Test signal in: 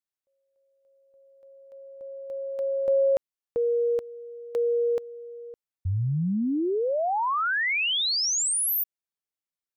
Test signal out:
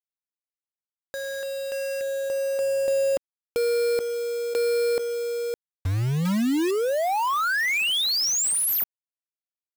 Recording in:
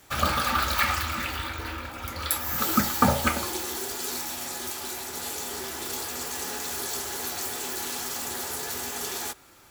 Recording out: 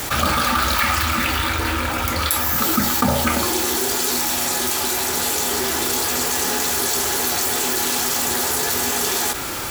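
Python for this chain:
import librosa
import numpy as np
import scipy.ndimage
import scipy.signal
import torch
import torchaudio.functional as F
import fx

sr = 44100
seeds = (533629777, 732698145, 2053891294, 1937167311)

y = fx.dynamic_eq(x, sr, hz=260.0, q=2.2, threshold_db=-44.0, ratio=4.0, max_db=4)
y = fx.quant_companded(y, sr, bits=4)
y = fx.env_flatten(y, sr, amount_pct=70)
y = y * 10.0 ** (-1.5 / 20.0)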